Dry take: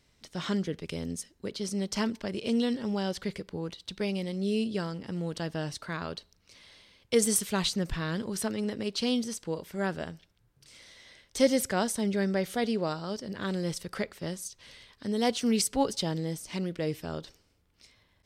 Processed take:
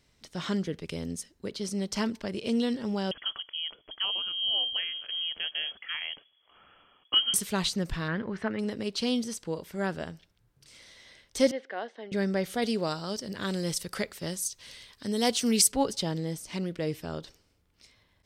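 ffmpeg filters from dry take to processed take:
-filter_complex "[0:a]asettb=1/sr,asplit=3[a][b][c];[a]atrim=end=3.114[d];[b]atrim=start=3.11:end=7.34,asetpts=PTS-STARTPTS,afade=t=in:d=0.004:c=qsin,afade=t=out:st=4.226:d=0.004:c=qsin,lowpass=f=2.9k:t=q:w=0.5098,lowpass=f=2.9k:t=q:w=0.6013,lowpass=f=2.9k:t=q:w=0.9,lowpass=f=2.9k:t=q:w=2.563,afreqshift=-3400[e];[c]atrim=start=7.336[f];[d][e]acrossfade=d=0.004:c1=hsin:c2=qsin[g];[g][f]acrossfade=d=0.004:c1=qsin:c2=hsin,asettb=1/sr,asplit=3[h][i][j];[h]atrim=end=8.084[k];[i]atrim=start=8.08:end=8.59,asetpts=PTS-STARTPTS,afade=t=in:d=0.004:c=qsin,afade=t=out:st=0.506:d=0.004:c=qsin,lowpass=f=1.9k:t=q:w=2.1[l];[j]atrim=start=8.586[m];[k][l]acrossfade=d=0.004:c1=hsin:c2=qsin[n];[n][m]acrossfade=d=0.004:c1=qsin:c2=hsin,asettb=1/sr,asplit=3[o][p][q];[o]atrim=end=11.514[r];[p]atrim=start=11.51:end=12.12,asetpts=PTS-STARTPTS,afade=t=in:d=0.004:c=qsin,afade=t=out:st=0.606:d=0.004:c=qsin,highpass=f=380:w=0.5412,highpass=f=380:w=1.3066,equalizer=f=390:t=q:w=4:g=-7,equalizer=f=580:t=q:w=4:g=-6,equalizer=f=940:t=q:w=4:g=-9,equalizer=f=1.3k:t=q:w=4:g=-9,equalizer=f=2.4k:t=q:w=4:g=-9,lowpass=f=2.7k:w=0.5412,lowpass=f=2.7k:w=1.3066[s];[q]atrim=start=12.116[t];[r][s]acrossfade=d=0.004:c1=hsin:c2=qsin[u];[u][t]acrossfade=d=0.004:c1=qsin:c2=hsin,asettb=1/sr,asplit=3[v][w][x];[v]atrim=end=12.624[y];[w]atrim=start=12.62:end=15.72,asetpts=PTS-STARTPTS,afade=t=in:d=0.004:c=qsin,afade=t=out:st=3.096:d=0.004:c=qsin,highshelf=f=4k:g=9.5[z];[x]atrim=start=15.716[aa];[y][z]acrossfade=d=0.004:c1=hsin:c2=qsin[ab];[ab][aa]acrossfade=d=0.004:c1=qsin:c2=hsin"

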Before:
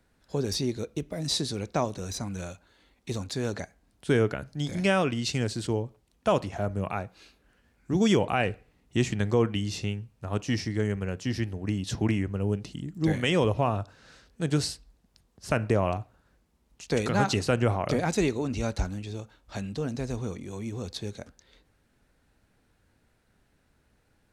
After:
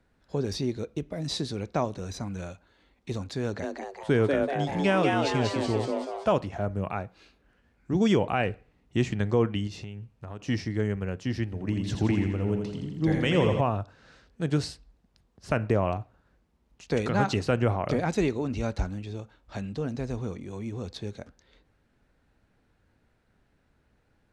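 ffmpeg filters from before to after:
-filter_complex "[0:a]asettb=1/sr,asplit=3[a][b][c];[a]atrim=end=3.434[d];[b]atrim=start=3.43:end=6.33,asetpts=PTS-STARTPTS,afade=t=in:d=0.004:c=qsin,afade=t=out:st=2.896:d=0.004:c=qsin,asplit=8[e][f][g][h][i][j][k][l];[f]adelay=191,afreqshift=140,volume=-3dB[m];[g]adelay=382,afreqshift=280,volume=-8.5dB[n];[h]adelay=573,afreqshift=420,volume=-14dB[o];[i]adelay=764,afreqshift=560,volume=-19.5dB[p];[j]adelay=955,afreqshift=700,volume=-25.1dB[q];[k]adelay=1146,afreqshift=840,volume=-30.6dB[r];[l]adelay=1337,afreqshift=980,volume=-36.1dB[s];[e][m][n][o][p][q][r][s]amix=inputs=8:normalize=0,atrim=end_sample=127890[t];[c]atrim=start=6.326[u];[d][t]acrossfade=d=0.004:c1=hsin:c2=qsin[v];[v][u]acrossfade=d=0.004:c1=qsin:c2=hsin,asettb=1/sr,asplit=3[w][x][y];[w]atrim=end=9.674[z];[x]atrim=start=9.67:end=10.42,asetpts=PTS-STARTPTS,afade=t=in:d=0.004:c=qsin,afade=t=out:st=0.746:d=0.004:c=qsin,acompressor=threshold=-34dB:ratio=6:attack=3.2:release=140:knee=1:detection=peak[aa];[y]atrim=start=10.416[ab];[z][aa]acrossfade=d=0.004:c1=hsin:c2=qsin[ac];[ac][ab]acrossfade=d=0.004:c1=qsin:c2=hsin,asettb=1/sr,asplit=3[ad][ae][af];[ad]atrim=end=11.444[ag];[ae]atrim=start=11.44:end=13.61,asetpts=PTS-STARTPTS,afade=t=in:d=0.004:c=qsin,afade=t=out:st=2.166:d=0.004:c=qsin,aecho=1:1:84|168|252|336|420|504|588|672:0.531|0.308|0.179|0.104|0.0601|0.0348|0.0202|0.0117,atrim=end_sample=95697[ah];[af]atrim=start=13.606[ai];[ag][ah]acrossfade=d=0.004:c1=hsin:c2=qsin[aj];[aj][ai]acrossfade=d=0.004:c1=qsin:c2=hsin,aemphasis=mode=reproduction:type=50kf"

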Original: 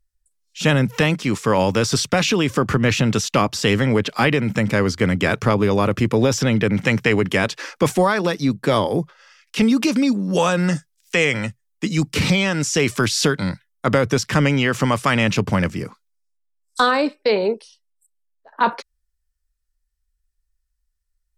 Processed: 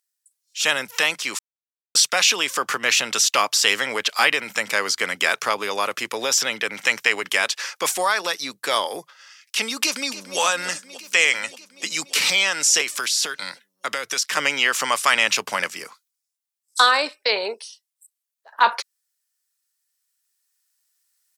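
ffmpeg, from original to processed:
-filter_complex "[0:a]asplit=2[a][b];[b]afade=t=in:st=9.82:d=0.01,afade=t=out:st=10.39:d=0.01,aecho=0:1:290|580|870|1160|1450|1740|2030|2320|2610|2900|3190|3480:0.199526|0.159621|0.127697|0.102157|0.0817259|0.0653808|0.0523046|0.0418437|0.0334749|0.02678|0.021424|0.0171392[c];[a][c]amix=inputs=2:normalize=0,asettb=1/sr,asplit=3[d][e][f];[d]atrim=end=12.814[g];[e]atrim=start=12.81:end=14.37,asetpts=PTS-STARTPTS,afade=t=in:d=0.004:c=qsin,afade=t=out:st=1.556:d=0.004:c=qsin,acrossover=split=600|1300[h][i][j];[h]acompressor=threshold=-23dB:ratio=4[k];[i]acompressor=threshold=-39dB:ratio=4[l];[j]acompressor=threshold=-27dB:ratio=4[m];[k][l][m]amix=inputs=3:normalize=0[n];[f]atrim=start=14.366[o];[g][n]acrossfade=d=0.004:c1=hsin:c2=qsin[p];[p][o]acrossfade=d=0.004:c1=qsin:c2=hsin,asplit=3[q][r][s];[q]atrim=end=1.39,asetpts=PTS-STARTPTS,afade=t=out:st=1.386:d=0.004:c=hsin[t];[r]atrim=start=1.39:end=1.95,asetpts=PTS-STARTPTS,volume=0[u];[s]atrim=start=1.95,asetpts=PTS-STARTPTS,afade=t=in:d=0.004:c=hsin[v];[t][u][v]concat=n=3:v=0:a=1,highpass=770,highshelf=f=3.4k:g=10,dynaudnorm=f=340:g=11:m=11.5dB,volume=-1dB"

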